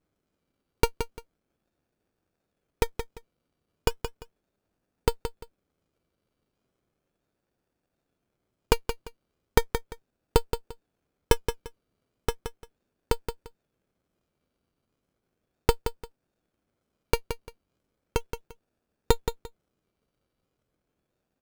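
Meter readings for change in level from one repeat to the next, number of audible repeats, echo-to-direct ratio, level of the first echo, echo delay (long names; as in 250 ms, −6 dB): −13.0 dB, 2, −8.5 dB, −8.5 dB, 173 ms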